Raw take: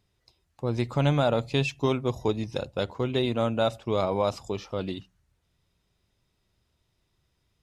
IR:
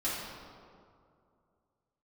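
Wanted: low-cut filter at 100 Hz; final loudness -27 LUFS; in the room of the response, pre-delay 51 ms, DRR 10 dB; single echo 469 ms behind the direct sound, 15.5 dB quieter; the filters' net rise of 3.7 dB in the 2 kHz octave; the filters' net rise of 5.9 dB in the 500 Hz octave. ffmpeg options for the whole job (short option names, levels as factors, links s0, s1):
-filter_complex "[0:a]highpass=100,equalizer=f=500:t=o:g=7,equalizer=f=2000:t=o:g=5,aecho=1:1:469:0.168,asplit=2[s0][s1];[1:a]atrim=start_sample=2205,adelay=51[s2];[s1][s2]afir=irnorm=-1:irlink=0,volume=0.15[s3];[s0][s3]amix=inputs=2:normalize=0,volume=0.631"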